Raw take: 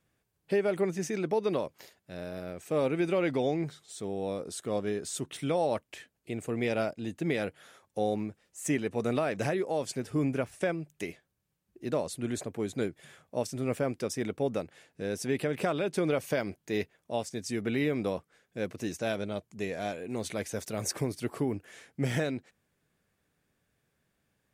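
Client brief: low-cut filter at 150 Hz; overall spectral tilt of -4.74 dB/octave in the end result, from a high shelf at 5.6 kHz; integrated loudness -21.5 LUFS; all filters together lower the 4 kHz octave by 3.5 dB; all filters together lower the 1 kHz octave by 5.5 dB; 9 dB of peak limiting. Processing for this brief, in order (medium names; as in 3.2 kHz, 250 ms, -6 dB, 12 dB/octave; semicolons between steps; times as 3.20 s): high-pass 150 Hz; peaking EQ 1 kHz -8.5 dB; peaking EQ 4 kHz -7 dB; treble shelf 5.6 kHz +6.5 dB; trim +17 dB; peak limiter -10.5 dBFS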